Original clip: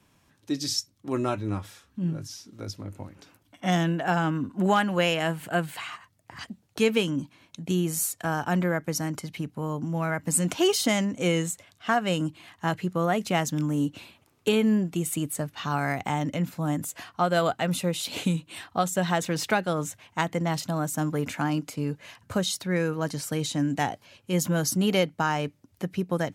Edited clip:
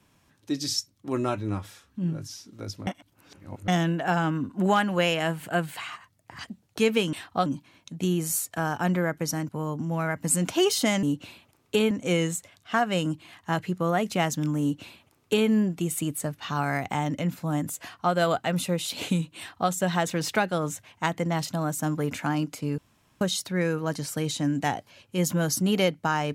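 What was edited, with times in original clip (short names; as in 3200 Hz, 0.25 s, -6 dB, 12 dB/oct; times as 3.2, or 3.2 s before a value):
2.87–3.68 reverse
9.16–9.52 cut
13.76–14.64 copy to 11.06
18.53–18.86 copy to 7.13
21.93–22.36 room tone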